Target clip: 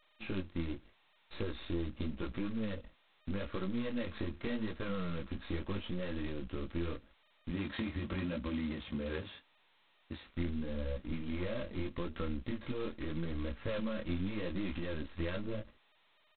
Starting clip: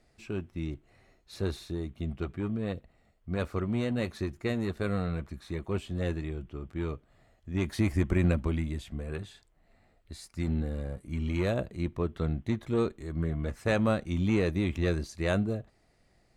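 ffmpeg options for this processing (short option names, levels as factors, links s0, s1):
-filter_complex "[0:a]aeval=exprs='if(lt(val(0),0),0.447*val(0),val(0))':c=same,agate=range=0.0112:threshold=0.00178:ratio=16:detection=peak,asettb=1/sr,asplit=3[s0][s1][s2];[s0]atrim=end=7.504[s3];[s1]atrim=start=7.5:end=10.27,asetpts=PTS-STARTPTS,afade=t=in:d=0.004:c=qsin,afade=t=out:st=2.766:d=0.004:c=qsin,highpass=91[s4];[s2]atrim=start=10.266[s5];[s3][s4]acrossfade=d=0.004:c1=hsin:c2=qsin[s6];[s6][s5]acrossfade=d=0.004:c1=qsin:c2=hsin,adynamicequalizer=threshold=0.00398:dfrequency=420:dqfactor=6.2:tfrequency=420:tqfactor=6.2:attack=5:release=100:ratio=0.375:range=2.5:mode=cutabove:tftype=bell,aecho=1:1:3.7:0.5,alimiter=level_in=1.33:limit=0.0631:level=0:latency=1:release=47,volume=0.75,acompressor=threshold=0.0112:ratio=16,flanger=delay=16:depth=7.6:speed=0.82,asuperstop=centerf=760:order=4:qfactor=3.9,volume=2.82" -ar 8000 -c:a adpcm_g726 -b:a 16k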